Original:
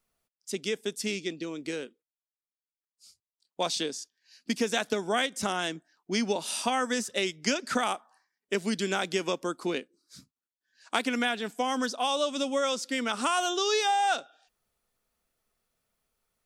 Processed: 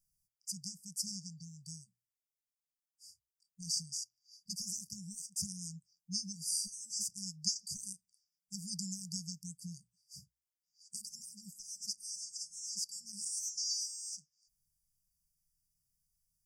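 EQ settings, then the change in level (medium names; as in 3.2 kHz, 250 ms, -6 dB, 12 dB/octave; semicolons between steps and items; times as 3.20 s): brick-wall FIR band-stop 190–4600 Hz; hum notches 60/120 Hz; 0.0 dB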